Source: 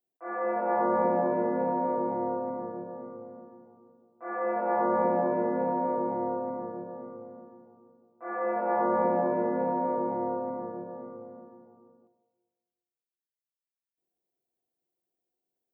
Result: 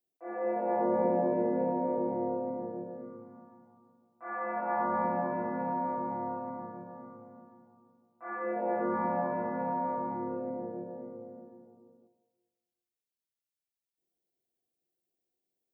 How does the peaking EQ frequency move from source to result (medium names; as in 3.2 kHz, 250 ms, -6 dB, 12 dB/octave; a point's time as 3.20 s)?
peaking EQ -13.5 dB 0.88 oct
2.84 s 1.3 kHz
3.44 s 430 Hz
8.27 s 430 Hz
8.65 s 1.4 kHz
9.13 s 400 Hz
10.03 s 400 Hz
10.55 s 1.2 kHz